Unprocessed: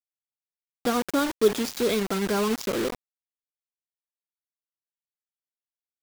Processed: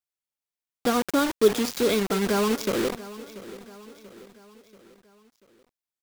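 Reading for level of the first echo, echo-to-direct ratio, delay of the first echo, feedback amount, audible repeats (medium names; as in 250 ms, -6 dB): -17.0 dB, -16.0 dB, 686 ms, 50%, 3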